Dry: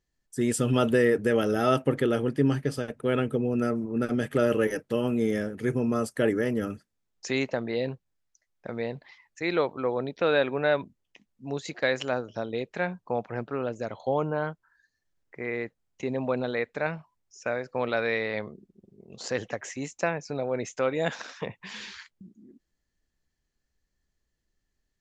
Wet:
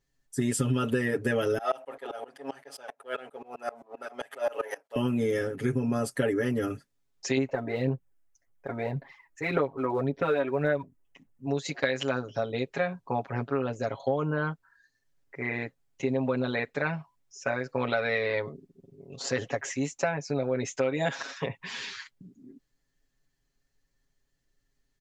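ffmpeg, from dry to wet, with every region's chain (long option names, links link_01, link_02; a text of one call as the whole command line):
ffmpeg -i in.wav -filter_complex "[0:a]asettb=1/sr,asplit=3[link_01][link_02][link_03];[link_01]atrim=end=1.584[link_04];[link_02]atrim=start=1.58:end=4.96,asetpts=PTS-STARTPTS,afade=type=in:duration=0.004:curve=qsin,afade=type=out:start_time=3.376:duration=0.004:curve=qsin,aeval=exprs='if(lt(val(0),0),0.708*val(0),val(0))':channel_layout=same,highpass=frequency=710:width_type=q:width=3.4,aeval=exprs='val(0)*pow(10,-26*if(lt(mod(-7.6*n/s,1),2*abs(-7.6)/1000),1-mod(-7.6*n/s,1)/(2*abs(-7.6)/1000),(mod(-7.6*n/s,1)-2*abs(-7.6)/1000)/(1-2*abs(-7.6)/1000))/20)':channel_layout=same[link_05];[link_03]atrim=start=4.956[link_06];[link_04][link_05]acrossfade=duration=0.004:curve1=hsin:curve2=qsin[link_07];[link_07][link_06]acrossfade=duration=0.004:curve1=qsin:curve2=hsin,asettb=1/sr,asplit=3[link_08][link_09][link_10];[link_08]atrim=end=7.374[link_11];[link_09]atrim=start=7.37:end=11.47,asetpts=PTS-STARTPTS,afade=type=in:duration=0.004:curve=qsin,afade=type=out:start_time=4.096:duration=0.004:curve=qsin,equalizer=frequency=4300:width_type=o:width=1.4:gain=-12.5,aphaser=in_gain=1:out_gain=1:delay=3.2:decay=0.53:speed=1.8:type=sinusoidal[link_12];[link_10]atrim=start=11.466[link_13];[link_11][link_12]acrossfade=duration=0.004:curve1=hsin:curve2=qsin[link_14];[link_14][link_13]acrossfade=duration=0.004:curve1=qsin:curve2=hsin,aecho=1:1:7.3:1,acompressor=threshold=-23dB:ratio=6" out.wav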